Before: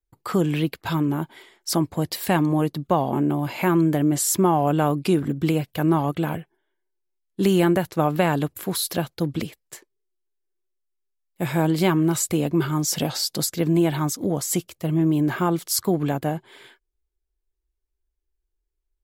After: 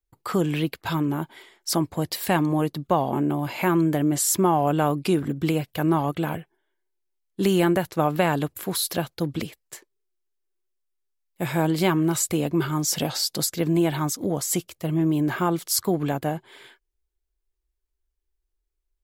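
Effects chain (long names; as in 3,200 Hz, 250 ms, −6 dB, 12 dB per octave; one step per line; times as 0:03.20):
parametric band 180 Hz −2.5 dB 2.4 octaves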